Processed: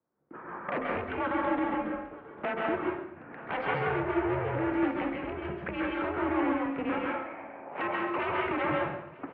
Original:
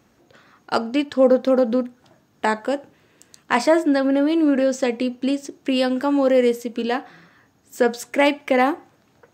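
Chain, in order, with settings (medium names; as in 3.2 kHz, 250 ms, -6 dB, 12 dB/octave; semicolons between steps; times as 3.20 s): local Wiener filter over 9 samples; recorder AGC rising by 26 dB/s; gate with hold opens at -36 dBFS; frequency shift -120 Hz; 6.92–8.18 s: ring modulator 780 Hz; wavefolder -15.5 dBFS; level-controlled noise filter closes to 1.3 kHz, open at -21 dBFS; saturation -28 dBFS, distortion -8 dB; on a send: delay 937 ms -22 dB; on the sum: plate-style reverb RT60 0.69 s, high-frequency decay 0.95×, pre-delay 120 ms, DRR -2 dB; mistuned SSB -80 Hz 260–2600 Hz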